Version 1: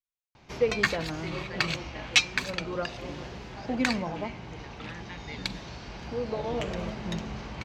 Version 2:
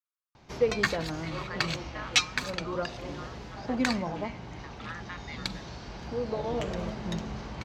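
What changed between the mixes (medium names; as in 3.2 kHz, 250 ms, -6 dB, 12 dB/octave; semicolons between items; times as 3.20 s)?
speech: add resonant high-pass 1.2 kHz, resonance Q 5.7; master: add peaking EQ 2.5 kHz -4.5 dB 0.77 oct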